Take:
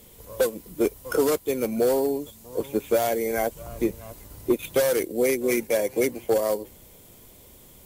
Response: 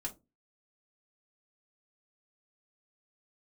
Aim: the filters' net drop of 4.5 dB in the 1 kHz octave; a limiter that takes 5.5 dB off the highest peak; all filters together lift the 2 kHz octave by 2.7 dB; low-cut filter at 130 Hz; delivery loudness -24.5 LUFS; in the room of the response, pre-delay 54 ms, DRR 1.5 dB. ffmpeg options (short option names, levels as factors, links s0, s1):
-filter_complex "[0:a]highpass=130,equalizer=f=1000:t=o:g=-8.5,equalizer=f=2000:t=o:g=5.5,alimiter=limit=0.133:level=0:latency=1,asplit=2[s0][s1];[1:a]atrim=start_sample=2205,adelay=54[s2];[s1][s2]afir=irnorm=-1:irlink=0,volume=0.891[s3];[s0][s3]amix=inputs=2:normalize=0,volume=1.33"